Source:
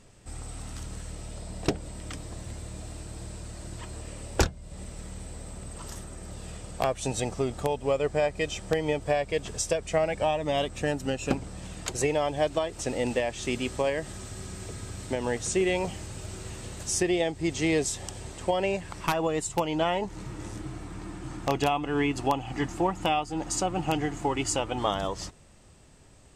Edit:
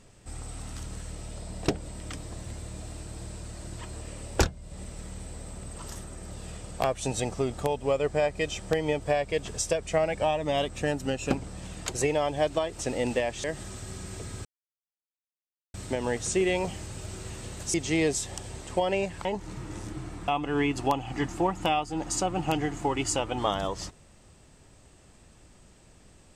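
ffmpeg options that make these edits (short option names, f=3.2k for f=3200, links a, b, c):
-filter_complex "[0:a]asplit=6[a][b][c][d][e][f];[a]atrim=end=13.442[g];[b]atrim=start=13.928:end=14.94,asetpts=PTS-STARTPTS,afade=t=out:st=1.008:d=0.004:c=hsin,apad=pad_dur=1.29[h];[c]atrim=start=14.94:end=16.942,asetpts=PTS-STARTPTS,afade=t=in:d=0.004:c=hsin[i];[d]atrim=start=17.448:end=18.962[j];[e]atrim=start=19.938:end=20.972[k];[f]atrim=start=21.678[l];[h][i]concat=n=2:v=0:a=1[m];[g][m]acrossfade=d=0.004:c1=hsin:c2=hsin[n];[n][j]acrossfade=d=0.004:c1=hsin:c2=hsin[o];[o][k]acrossfade=d=0.004:c1=hsin:c2=hsin[p];[p][l]acrossfade=d=0.004:c1=hsin:c2=hsin"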